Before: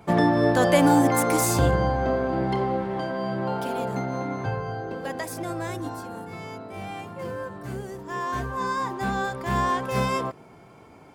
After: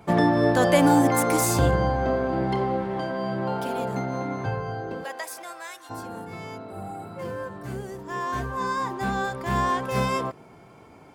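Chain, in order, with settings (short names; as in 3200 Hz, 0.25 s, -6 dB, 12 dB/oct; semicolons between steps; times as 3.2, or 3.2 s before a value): 5.03–5.89 HPF 560 Hz -> 1500 Hz 12 dB/oct; 6.68–7.16 spectral repair 1000–7100 Hz before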